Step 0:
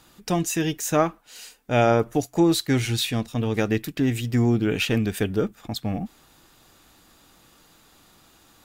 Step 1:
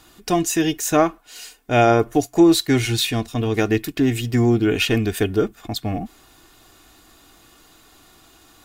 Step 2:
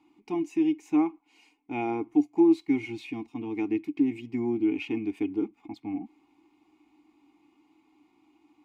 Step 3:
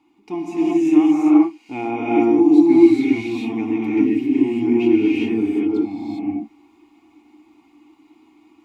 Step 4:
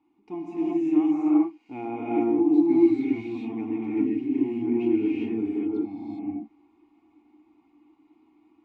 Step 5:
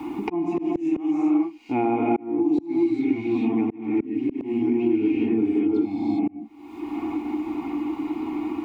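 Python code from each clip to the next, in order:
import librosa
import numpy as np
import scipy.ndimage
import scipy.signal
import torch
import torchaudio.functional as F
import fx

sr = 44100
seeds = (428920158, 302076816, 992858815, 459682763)

y1 = x + 0.44 * np.pad(x, (int(2.8 * sr / 1000.0), 0))[:len(x)]
y1 = y1 * librosa.db_to_amplitude(3.5)
y2 = fx.vowel_filter(y1, sr, vowel='u')
y2 = fx.peak_eq(y2, sr, hz=3700.0, db=-5.0, octaves=0.37)
y3 = fx.rev_gated(y2, sr, seeds[0], gate_ms=430, shape='rising', drr_db=-6.5)
y3 = y3 * librosa.db_to_amplitude(3.0)
y4 = fx.lowpass(y3, sr, hz=1400.0, slope=6)
y4 = y4 * librosa.db_to_amplitude(-7.5)
y5 = fx.auto_swell(y4, sr, attack_ms=750.0)
y5 = fx.band_squash(y5, sr, depth_pct=100)
y5 = y5 * librosa.db_to_amplitude(7.0)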